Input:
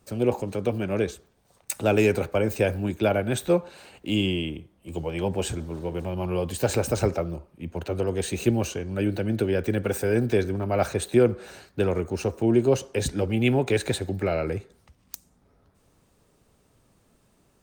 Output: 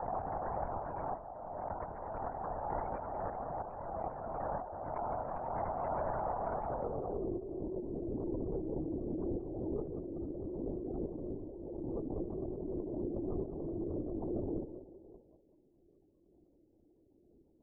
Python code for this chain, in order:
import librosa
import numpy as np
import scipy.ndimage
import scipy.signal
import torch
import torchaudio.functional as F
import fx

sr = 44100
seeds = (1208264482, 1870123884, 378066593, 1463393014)

p1 = fx.low_shelf(x, sr, hz=350.0, db=2.5)
p2 = p1 + 0.77 * np.pad(p1, (int(7.0 * sr / 1000.0), 0))[:len(p1)]
p3 = fx.rotary_switch(p2, sr, hz=0.7, then_hz=5.5, switch_at_s=14.69)
p4 = fx.comb_fb(p3, sr, f0_hz=380.0, decay_s=0.22, harmonics='odd', damping=0.0, mix_pct=90)
p5 = fx.noise_vocoder(p4, sr, seeds[0], bands=1)
p6 = fx.filter_sweep_lowpass(p5, sr, from_hz=760.0, to_hz=340.0, start_s=6.64, end_s=7.27, q=4.1)
p7 = fx.spec_gate(p6, sr, threshold_db=-25, keep='strong')
p8 = fx.over_compress(p7, sr, threshold_db=-51.0, ratio=-1.0)
p9 = p8 + fx.echo_banded(p8, sr, ms=192, feedback_pct=50, hz=570.0, wet_db=-8.5, dry=0)
p10 = fx.lpc_vocoder(p9, sr, seeds[1], excitation='whisper', order=10)
p11 = fx.pre_swell(p10, sr, db_per_s=25.0)
y = p11 * librosa.db_to_amplitude(9.0)